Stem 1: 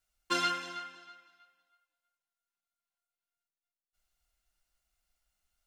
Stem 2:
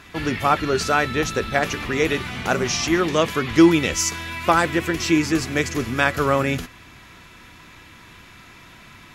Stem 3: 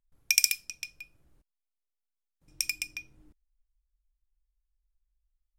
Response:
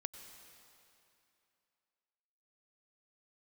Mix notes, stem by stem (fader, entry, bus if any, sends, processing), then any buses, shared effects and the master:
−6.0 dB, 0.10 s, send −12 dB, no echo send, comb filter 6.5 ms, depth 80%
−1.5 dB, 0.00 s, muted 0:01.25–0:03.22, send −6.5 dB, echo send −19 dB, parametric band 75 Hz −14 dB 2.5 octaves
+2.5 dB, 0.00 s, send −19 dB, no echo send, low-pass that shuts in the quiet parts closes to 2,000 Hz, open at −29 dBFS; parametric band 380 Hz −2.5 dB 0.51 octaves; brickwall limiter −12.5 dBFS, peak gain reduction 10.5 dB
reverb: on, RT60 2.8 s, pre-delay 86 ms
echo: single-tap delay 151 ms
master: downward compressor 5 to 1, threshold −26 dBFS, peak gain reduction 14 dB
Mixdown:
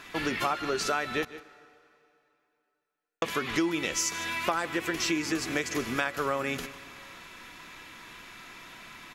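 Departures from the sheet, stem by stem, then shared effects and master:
stem 3: muted
reverb return −9.0 dB

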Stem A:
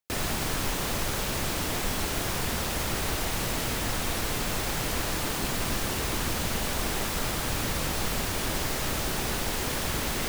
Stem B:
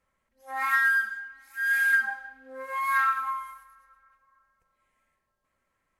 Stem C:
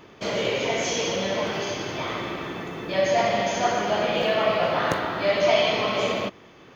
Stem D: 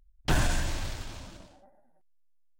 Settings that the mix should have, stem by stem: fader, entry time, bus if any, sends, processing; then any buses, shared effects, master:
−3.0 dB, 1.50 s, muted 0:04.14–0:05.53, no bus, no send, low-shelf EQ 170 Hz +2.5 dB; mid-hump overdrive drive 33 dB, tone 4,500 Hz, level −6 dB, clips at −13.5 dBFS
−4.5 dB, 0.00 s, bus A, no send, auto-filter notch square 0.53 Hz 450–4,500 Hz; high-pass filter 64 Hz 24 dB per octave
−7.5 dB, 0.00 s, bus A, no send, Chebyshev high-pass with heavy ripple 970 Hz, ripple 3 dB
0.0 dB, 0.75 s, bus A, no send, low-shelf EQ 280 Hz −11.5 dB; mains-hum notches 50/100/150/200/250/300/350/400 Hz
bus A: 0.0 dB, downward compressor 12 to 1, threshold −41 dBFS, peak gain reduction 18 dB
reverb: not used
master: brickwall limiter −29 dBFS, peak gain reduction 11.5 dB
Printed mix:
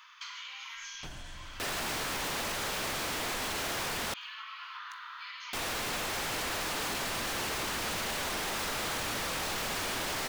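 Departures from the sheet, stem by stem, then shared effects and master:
stem B −4.5 dB → −15.0 dB
stem C −7.5 dB → +1.0 dB
stem D: missing low-shelf EQ 280 Hz −11.5 dB

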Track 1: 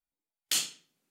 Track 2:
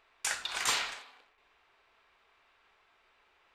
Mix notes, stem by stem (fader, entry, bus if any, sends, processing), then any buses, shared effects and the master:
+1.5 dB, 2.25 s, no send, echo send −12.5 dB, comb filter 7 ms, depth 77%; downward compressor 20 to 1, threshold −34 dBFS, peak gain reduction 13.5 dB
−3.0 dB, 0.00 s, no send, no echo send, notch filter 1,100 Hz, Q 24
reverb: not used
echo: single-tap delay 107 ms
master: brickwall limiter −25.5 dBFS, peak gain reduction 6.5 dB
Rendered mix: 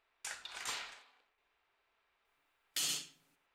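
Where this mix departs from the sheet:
stem 1: missing downward compressor 20 to 1, threshold −34 dBFS, peak gain reduction 13.5 dB
stem 2 −3.0 dB → −11.0 dB

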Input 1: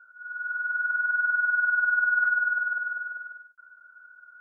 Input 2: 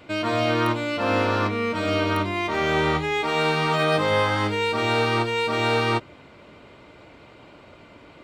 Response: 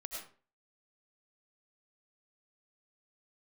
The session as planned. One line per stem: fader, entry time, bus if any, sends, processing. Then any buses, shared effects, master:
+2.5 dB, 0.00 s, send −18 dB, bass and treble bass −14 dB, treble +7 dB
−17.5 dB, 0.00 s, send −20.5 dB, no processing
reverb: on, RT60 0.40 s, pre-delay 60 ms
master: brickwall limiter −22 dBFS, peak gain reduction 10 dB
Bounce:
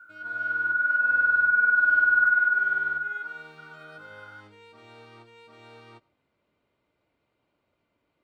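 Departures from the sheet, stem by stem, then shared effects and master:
stem 2 −17.5 dB → −28.5 dB
master: missing brickwall limiter −22 dBFS, peak gain reduction 10 dB

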